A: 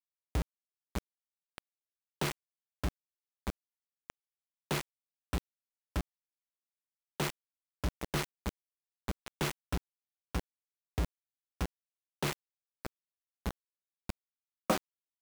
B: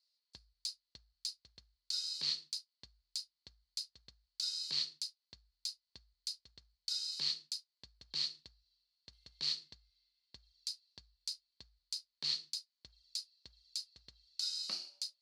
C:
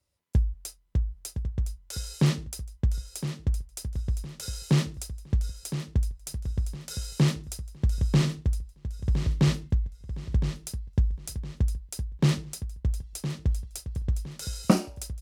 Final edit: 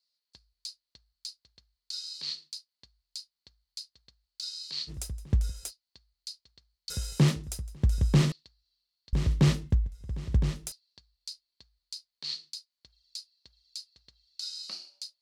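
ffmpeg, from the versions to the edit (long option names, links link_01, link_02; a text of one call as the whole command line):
ffmpeg -i take0.wav -i take1.wav -i take2.wav -filter_complex "[2:a]asplit=3[link_01][link_02][link_03];[1:a]asplit=4[link_04][link_05][link_06][link_07];[link_04]atrim=end=4.91[link_08];[link_01]atrim=start=4.87:end=5.72[link_09];[link_05]atrim=start=5.68:end=6.902[link_10];[link_02]atrim=start=6.898:end=8.322[link_11];[link_06]atrim=start=8.318:end=9.132[link_12];[link_03]atrim=start=9.128:end=10.722[link_13];[link_07]atrim=start=10.718[link_14];[link_08][link_09]acrossfade=duration=0.04:curve1=tri:curve2=tri[link_15];[link_15][link_10]acrossfade=duration=0.04:curve1=tri:curve2=tri[link_16];[link_16][link_11]acrossfade=duration=0.004:curve1=hsin:curve2=hsin[link_17];[link_17][link_12]acrossfade=duration=0.004:curve1=hsin:curve2=hsin[link_18];[link_18][link_13]acrossfade=duration=0.004:curve1=hsin:curve2=hsin[link_19];[link_19][link_14]acrossfade=duration=0.004:curve1=hsin:curve2=hsin" out.wav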